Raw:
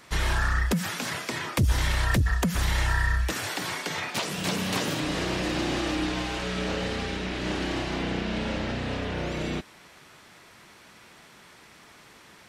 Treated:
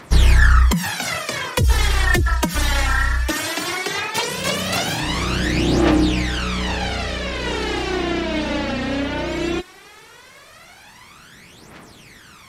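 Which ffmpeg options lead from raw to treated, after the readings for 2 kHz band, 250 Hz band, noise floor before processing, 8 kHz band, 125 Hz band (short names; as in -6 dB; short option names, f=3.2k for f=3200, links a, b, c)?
+8.0 dB, +7.5 dB, -52 dBFS, +8.0 dB, +7.5 dB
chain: -af "aphaser=in_gain=1:out_gain=1:delay=3.8:decay=0.69:speed=0.17:type=triangular,volume=5dB"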